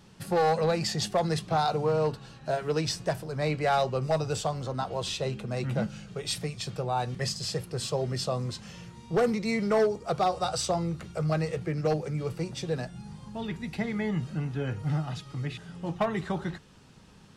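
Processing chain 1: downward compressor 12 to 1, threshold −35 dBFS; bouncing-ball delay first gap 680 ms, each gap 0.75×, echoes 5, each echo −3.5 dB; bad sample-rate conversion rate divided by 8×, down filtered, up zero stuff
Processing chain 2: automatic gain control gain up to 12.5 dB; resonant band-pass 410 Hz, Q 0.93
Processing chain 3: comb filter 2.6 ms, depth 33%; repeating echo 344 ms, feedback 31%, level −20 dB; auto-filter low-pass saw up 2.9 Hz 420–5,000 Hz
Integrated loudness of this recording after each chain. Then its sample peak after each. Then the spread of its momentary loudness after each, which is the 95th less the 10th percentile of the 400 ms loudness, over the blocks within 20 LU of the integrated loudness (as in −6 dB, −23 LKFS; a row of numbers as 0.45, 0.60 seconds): −25.0, −21.0, −27.5 LKFS; −5.0, −5.0, −10.0 dBFS; 2, 13, 13 LU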